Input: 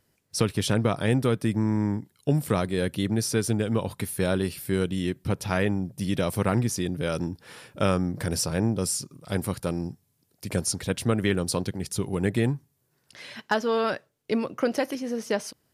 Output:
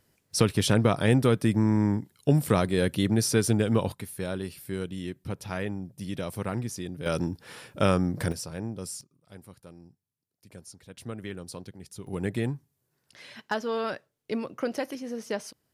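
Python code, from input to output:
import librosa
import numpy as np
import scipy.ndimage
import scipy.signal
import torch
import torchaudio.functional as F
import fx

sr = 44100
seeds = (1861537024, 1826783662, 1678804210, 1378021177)

y = fx.gain(x, sr, db=fx.steps((0.0, 1.5), (3.92, -7.5), (7.06, 0.5), (8.32, -10.0), (9.01, -20.0), (10.97, -13.5), (12.07, -5.0)))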